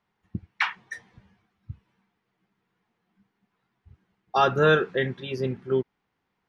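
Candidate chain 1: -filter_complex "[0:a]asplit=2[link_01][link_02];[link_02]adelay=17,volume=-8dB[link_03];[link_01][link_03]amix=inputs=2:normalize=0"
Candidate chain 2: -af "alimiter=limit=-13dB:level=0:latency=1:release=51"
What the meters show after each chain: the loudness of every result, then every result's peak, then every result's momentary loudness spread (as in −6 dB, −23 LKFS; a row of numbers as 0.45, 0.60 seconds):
−24.5, −27.0 LKFS; −7.0, −13.0 dBFS; 20, 22 LU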